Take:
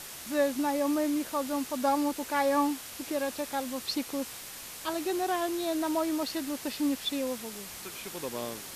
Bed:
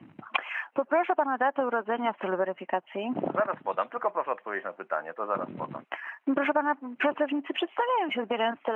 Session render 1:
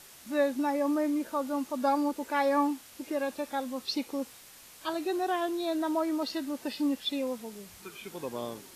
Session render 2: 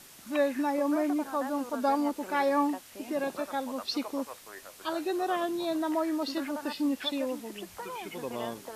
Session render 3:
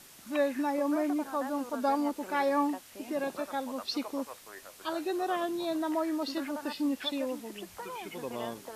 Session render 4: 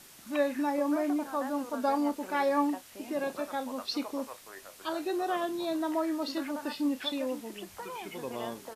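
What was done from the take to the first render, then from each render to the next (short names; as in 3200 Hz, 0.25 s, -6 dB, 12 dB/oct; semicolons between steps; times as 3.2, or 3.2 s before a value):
noise print and reduce 9 dB
add bed -14 dB
gain -1.5 dB
doubler 31 ms -13.5 dB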